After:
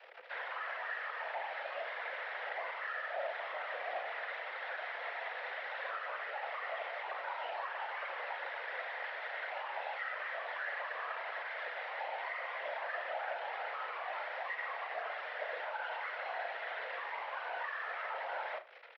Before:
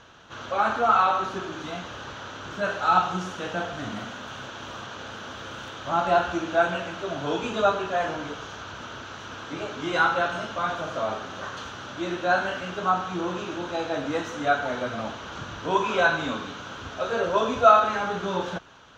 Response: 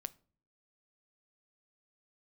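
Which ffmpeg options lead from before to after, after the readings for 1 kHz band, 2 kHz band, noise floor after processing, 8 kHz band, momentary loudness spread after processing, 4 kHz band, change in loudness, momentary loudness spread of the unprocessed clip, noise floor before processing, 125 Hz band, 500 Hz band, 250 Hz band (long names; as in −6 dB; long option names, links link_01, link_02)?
−15.0 dB, −8.0 dB, −44 dBFS, can't be measured, 2 LU, −14.0 dB, −14.0 dB, 16 LU, −40 dBFS, below −40 dB, −16.0 dB, below −35 dB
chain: -af "aecho=1:1:4.9:0.89,acompressor=threshold=-32dB:ratio=6,alimiter=level_in=9.5dB:limit=-24dB:level=0:latency=1:release=55,volume=-9.5dB,aresample=11025,acrusher=bits=6:mix=0:aa=0.000001,aresample=44100,afreqshift=480,afftfilt=real='hypot(re,im)*cos(2*PI*random(0))':imag='hypot(re,im)*sin(2*PI*random(1))':win_size=512:overlap=0.75,highpass=frequency=170:width=0.5412,highpass=frequency=170:width=1.3066,equalizer=frequency=210:width_type=q:width=4:gain=-4,equalizer=frequency=510:width_type=q:width=4:gain=5,equalizer=frequency=1100:width_type=q:width=4:gain=-6,lowpass=frequency=2500:width=0.5412,lowpass=frequency=2500:width=1.3066,aecho=1:1:36|80:0.282|0.141,volume=7.5dB"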